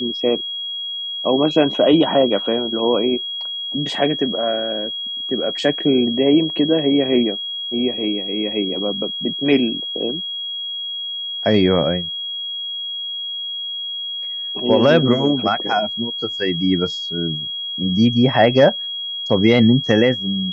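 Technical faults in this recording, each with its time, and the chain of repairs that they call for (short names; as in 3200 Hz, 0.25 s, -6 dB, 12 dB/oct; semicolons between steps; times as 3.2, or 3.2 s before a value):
tone 3300 Hz -24 dBFS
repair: notch 3300 Hz, Q 30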